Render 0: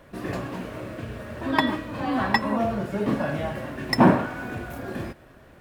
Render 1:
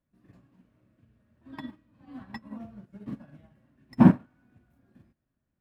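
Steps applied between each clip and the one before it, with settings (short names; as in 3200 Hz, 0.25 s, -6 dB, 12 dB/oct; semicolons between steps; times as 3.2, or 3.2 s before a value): resonant low shelf 320 Hz +8 dB, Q 1.5; upward expander 2.5:1, over -25 dBFS; gain -5.5 dB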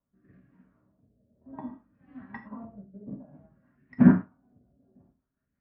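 rotary speaker horn 1.1 Hz, later 5.5 Hz, at 3.13; LFO low-pass sine 0.58 Hz 570–1900 Hz; non-linear reverb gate 0.14 s falling, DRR 3.5 dB; gain -2.5 dB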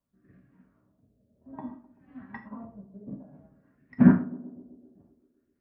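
narrowing echo 0.128 s, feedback 72%, band-pass 390 Hz, level -16 dB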